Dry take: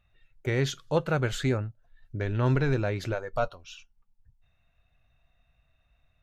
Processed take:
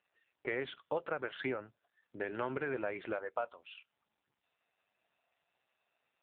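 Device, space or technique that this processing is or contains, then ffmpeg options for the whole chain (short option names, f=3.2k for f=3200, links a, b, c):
voicemail: -af "highpass=420,lowpass=2.9k,acompressor=threshold=-32dB:ratio=10,volume=1dB" -ar 8000 -c:a libopencore_amrnb -b:a 5900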